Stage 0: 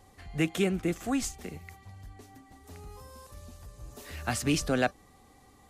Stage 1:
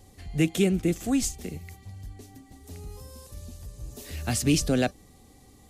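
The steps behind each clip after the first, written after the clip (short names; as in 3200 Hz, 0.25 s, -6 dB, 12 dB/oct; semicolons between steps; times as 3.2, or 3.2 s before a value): bell 1200 Hz -12 dB 1.9 oct; gain +6.5 dB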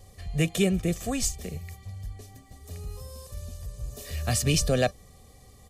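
comb 1.7 ms, depth 64%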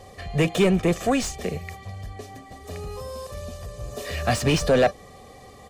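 overdrive pedal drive 22 dB, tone 1100 Hz, clips at -10 dBFS; gain +2 dB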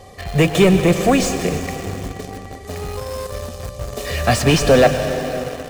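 plate-style reverb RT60 4 s, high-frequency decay 0.8×, pre-delay 95 ms, DRR 7 dB; in parallel at -9.5 dB: bit-crush 5-bit; on the sum: gain +4 dB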